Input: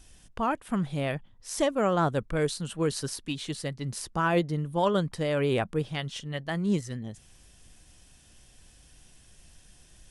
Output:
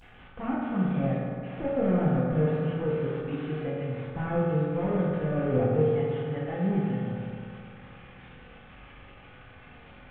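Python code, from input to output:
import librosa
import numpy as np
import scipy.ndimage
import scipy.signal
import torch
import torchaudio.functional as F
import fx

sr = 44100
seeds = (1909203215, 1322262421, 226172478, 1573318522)

y = fx.delta_mod(x, sr, bps=16000, step_db=-42.0)
y = fx.rev_fdn(y, sr, rt60_s=2.3, lf_ratio=1.05, hf_ratio=0.45, size_ms=12.0, drr_db=-7.0)
y = y * 10.0 ** (-5.5 / 20.0)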